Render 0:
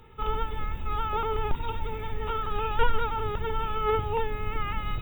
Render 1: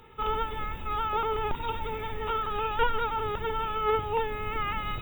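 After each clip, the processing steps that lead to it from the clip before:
low-shelf EQ 170 Hz −9 dB
in parallel at −3 dB: speech leveller within 3 dB 0.5 s
on the sum: level −3 dB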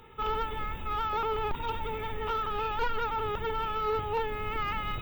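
soft clipping −23 dBFS, distortion −14 dB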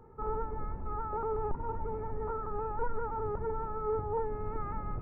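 Gaussian smoothing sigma 7.6 samples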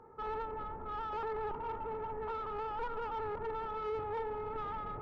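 delay that swaps between a low-pass and a high-pass 101 ms, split 880 Hz, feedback 85%, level −13.5 dB
mid-hump overdrive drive 18 dB, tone 1,900 Hz, clips at −22.5 dBFS
level −7.5 dB

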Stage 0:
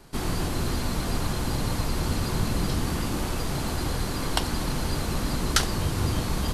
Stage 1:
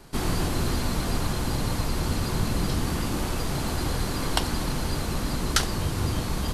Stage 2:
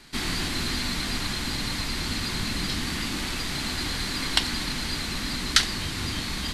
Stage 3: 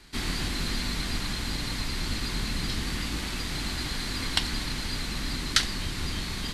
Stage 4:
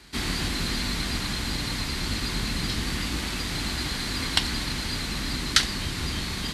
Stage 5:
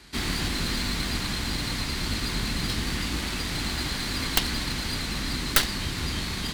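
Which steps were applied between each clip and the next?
speech leveller 2 s
graphic EQ with 10 bands 125 Hz −3 dB, 250 Hz +6 dB, 500 Hz −5 dB, 2,000 Hz +11 dB, 4,000 Hz +11 dB, 8,000 Hz +5 dB; level −6 dB
sub-octave generator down 2 octaves, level +3 dB; level −3.5 dB
high-pass filter 41 Hz; level +3 dB
stylus tracing distortion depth 0.23 ms

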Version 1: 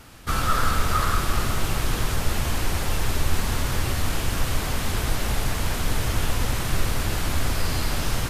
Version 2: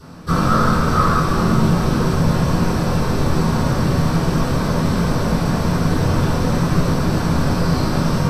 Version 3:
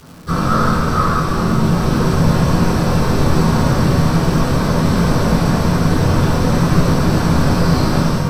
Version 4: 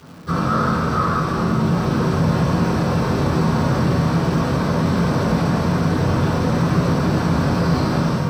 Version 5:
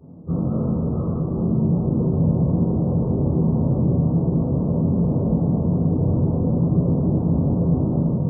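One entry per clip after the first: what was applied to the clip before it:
convolution reverb RT60 0.45 s, pre-delay 3 ms, DRR −11 dB; level −8.5 dB
automatic gain control; surface crackle 290 per second −31 dBFS; level −1 dB
high-pass filter 81 Hz; parametric band 12,000 Hz −8.5 dB 1.7 octaves; in parallel at −2 dB: brickwall limiter −13 dBFS, peak gain reduction 10.5 dB; on the sum: level −6 dB
Gaussian smoothing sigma 14 samples

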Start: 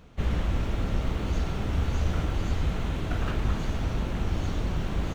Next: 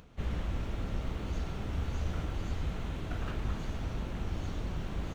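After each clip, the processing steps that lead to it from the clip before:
upward compression, threshold −43 dBFS
level −7.5 dB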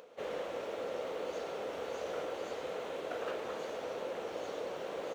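high-pass with resonance 500 Hz, resonance Q 4.9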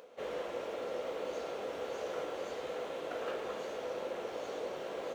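convolution reverb, pre-delay 3 ms, DRR 7 dB
level −1 dB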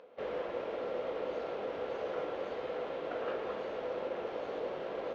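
in parallel at −9.5 dB: bit reduction 7 bits
on the sum: high-frequency loss of the air 270 metres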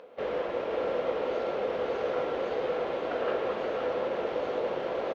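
single-tap delay 525 ms −5.5 dB
level +6 dB

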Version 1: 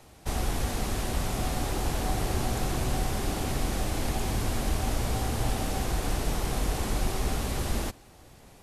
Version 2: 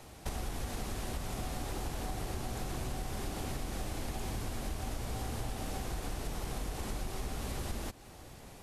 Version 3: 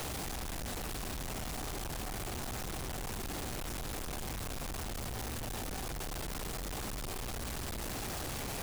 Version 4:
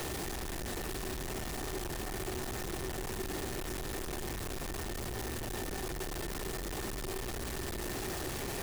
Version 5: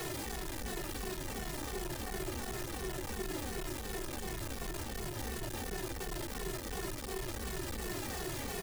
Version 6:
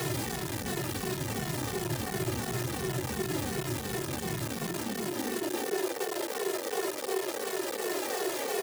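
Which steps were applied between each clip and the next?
downward compressor 6 to 1, threshold −36 dBFS, peak gain reduction 13.5 dB; level +1.5 dB
sign of each sample alone; level −1.5 dB
hollow resonant body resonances 370/1,800 Hz, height 10 dB, ringing for 45 ms
barber-pole flanger 2.3 ms −2.8 Hz; level +1.5 dB
high-pass filter sweep 120 Hz → 450 Hz, 0:04.21–0:05.94; level +6 dB

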